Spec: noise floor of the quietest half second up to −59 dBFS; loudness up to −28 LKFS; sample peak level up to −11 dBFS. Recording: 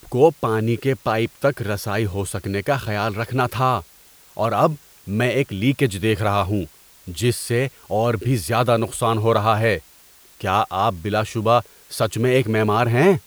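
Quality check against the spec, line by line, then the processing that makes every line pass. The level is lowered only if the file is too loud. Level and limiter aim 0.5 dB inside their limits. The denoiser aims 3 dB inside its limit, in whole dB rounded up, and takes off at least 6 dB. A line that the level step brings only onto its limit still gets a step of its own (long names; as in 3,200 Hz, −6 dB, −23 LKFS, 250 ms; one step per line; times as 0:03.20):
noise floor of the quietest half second −50 dBFS: out of spec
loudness −21.0 LKFS: out of spec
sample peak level −2.5 dBFS: out of spec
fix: broadband denoise 6 dB, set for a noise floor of −50 dBFS
level −7.5 dB
brickwall limiter −11.5 dBFS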